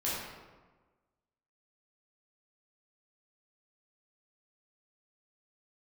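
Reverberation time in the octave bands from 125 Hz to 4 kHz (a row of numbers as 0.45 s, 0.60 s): 1.4 s, 1.4 s, 1.4 s, 1.3 s, 1.0 s, 0.80 s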